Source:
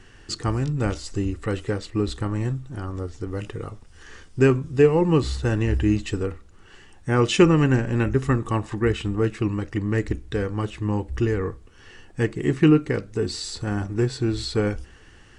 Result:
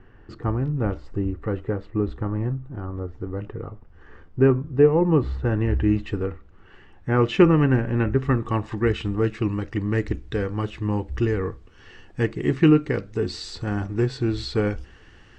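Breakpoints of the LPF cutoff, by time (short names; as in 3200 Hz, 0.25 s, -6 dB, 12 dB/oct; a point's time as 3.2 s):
5.15 s 1300 Hz
5.92 s 2300 Hz
8.15 s 2300 Hz
8.78 s 4800 Hz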